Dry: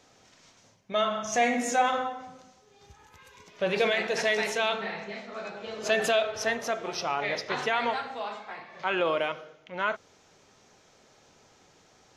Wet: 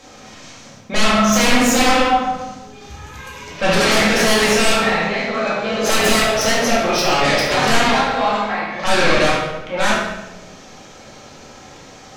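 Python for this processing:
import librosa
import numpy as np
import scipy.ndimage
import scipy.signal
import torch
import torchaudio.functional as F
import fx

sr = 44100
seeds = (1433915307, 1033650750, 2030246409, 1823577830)

p1 = fx.fold_sine(x, sr, drive_db=14, ceiling_db=-13.0)
p2 = p1 + fx.echo_thinned(p1, sr, ms=72, feedback_pct=47, hz=420.0, wet_db=-11.0, dry=0)
p3 = fx.room_shoebox(p2, sr, seeds[0], volume_m3=350.0, walls='mixed', distance_m=2.2)
y = p3 * 10.0 ** (-5.5 / 20.0)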